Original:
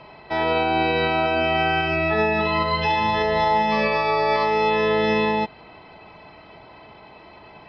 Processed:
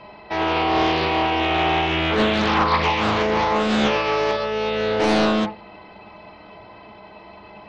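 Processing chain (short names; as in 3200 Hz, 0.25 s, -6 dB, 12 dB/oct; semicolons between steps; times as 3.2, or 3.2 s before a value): 4.31–5 fixed phaser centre 1500 Hz, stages 8; on a send at -3 dB: reverb RT60 0.35 s, pre-delay 5 ms; on the sum: Doppler distortion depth 0.78 ms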